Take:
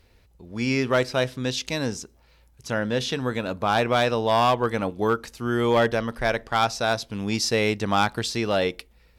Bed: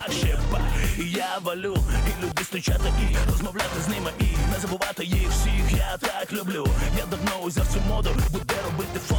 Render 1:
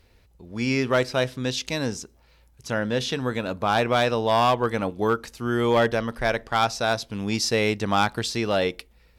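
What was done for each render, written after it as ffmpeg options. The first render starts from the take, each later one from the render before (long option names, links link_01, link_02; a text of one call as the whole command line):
ffmpeg -i in.wav -af anull out.wav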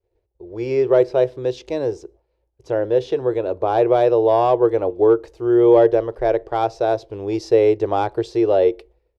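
ffmpeg -i in.wav -af "agate=range=-33dB:threshold=-47dB:ratio=3:detection=peak,firequalizer=gain_entry='entry(110,0);entry(230,-18);entry(340,13);entry(1300,-8);entry(12000,-21)':delay=0.05:min_phase=1" out.wav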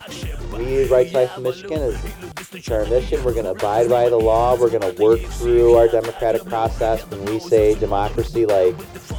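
ffmpeg -i in.wav -i bed.wav -filter_complex "[1:a]volume=-5.5dB[link_01];[0:a][link_01]amix=inputs=2:normalize=0" out.wav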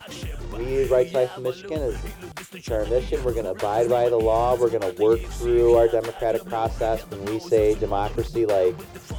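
ffmpeg -i in.wav -af "volume=-4.5dB" out.wav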